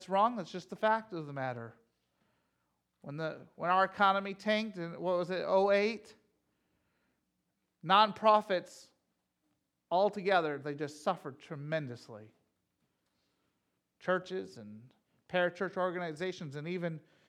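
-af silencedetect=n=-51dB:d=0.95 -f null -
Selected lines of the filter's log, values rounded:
silence_start: 1.72
silence_end: 3.04 | silence_duration: 1.32
silence_start: 6.13
silence_end: 7.84 | silence_duration: 1.71
silence_start: 8.85
silence_end: 9.91 | silence_duration: 1.06
silence_start: 12.26
silence_end: 14.01 | silence_duration: 1.74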